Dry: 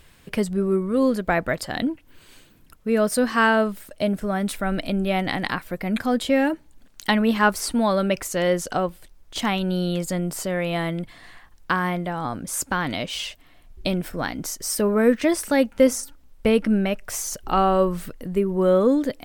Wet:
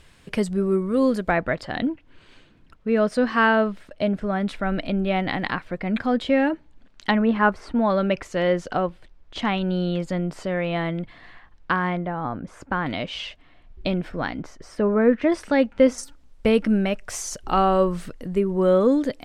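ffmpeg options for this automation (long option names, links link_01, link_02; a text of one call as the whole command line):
ffmpeg -i in.wav -af "asetnsamples=nb_out_samples=441:pad=0,asendcmd='1.31 lowpass f 3600;7.11 lowpass f 1900;7.9 lowpass f 3300;11.97 lowpass f 1800;12.86 lowpass f 3400;14.42 lowpass f 2000;15.32 lowpass f 3600;15.98 lowpass f 8000',lowpass=8900" out.wav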